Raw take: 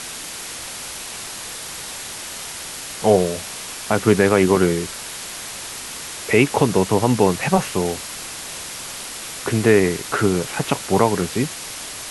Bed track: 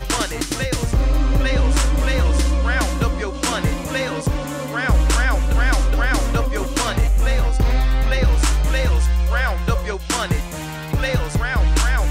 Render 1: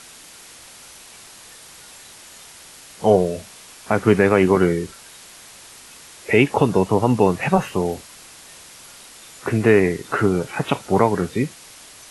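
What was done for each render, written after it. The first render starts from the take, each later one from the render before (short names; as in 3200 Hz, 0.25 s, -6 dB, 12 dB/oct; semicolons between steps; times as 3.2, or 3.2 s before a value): noise print and reduce 11 dB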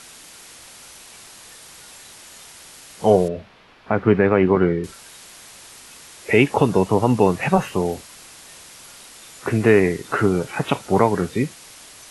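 3.28–4.84 air absorption 340 m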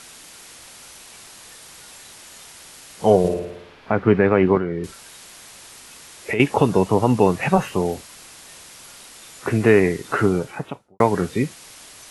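3.19–3.92 flutter echo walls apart 9.5 m, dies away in 0.83 s; 4.57–6.4 compressor 5:1, threshold -20 dBFS; 10.24–11 studio fade out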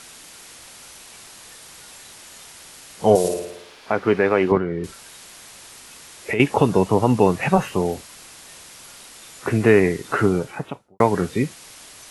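3.15–4.52 tone controls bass -10 dB, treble +14 dB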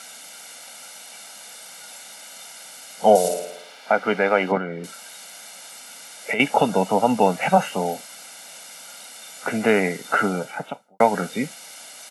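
HPF 210 Hz 24 dB/oct; comb 1.4 ms, depth 76%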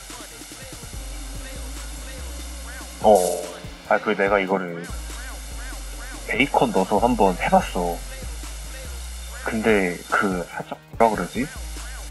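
add bed track -18 dB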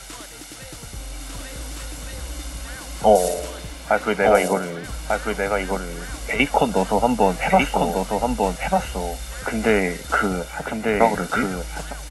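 echo 1.196 s -3.5 dB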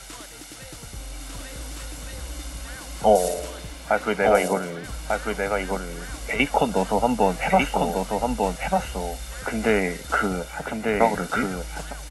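gain -2.5 dB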